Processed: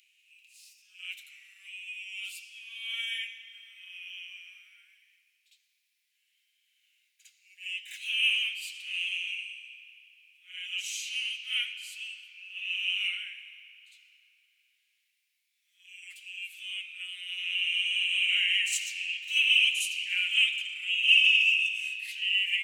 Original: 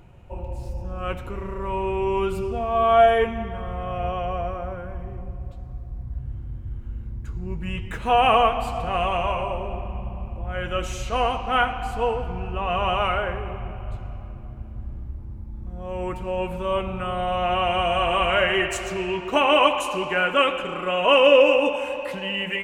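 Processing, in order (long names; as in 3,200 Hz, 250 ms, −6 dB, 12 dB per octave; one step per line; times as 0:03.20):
Butterworth high-pass 2,300 Hz 48 dB per octave
backwards echo 55 ms −8 dB
level +2 dB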